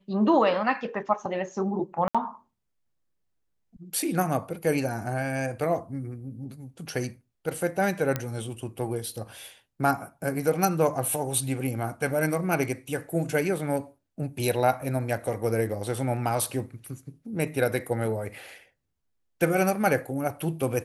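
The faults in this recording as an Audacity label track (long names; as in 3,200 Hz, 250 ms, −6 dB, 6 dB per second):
2.080000	2.150000	drop-out 66 ms
8.160000	8.160000	click −12 dBFS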